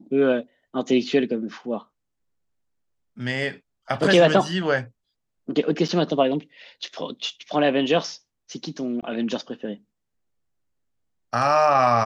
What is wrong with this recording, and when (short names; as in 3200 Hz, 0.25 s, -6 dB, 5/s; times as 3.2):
5.88–5.89 gap 7 ms
9.01–9.03 gap 17 ms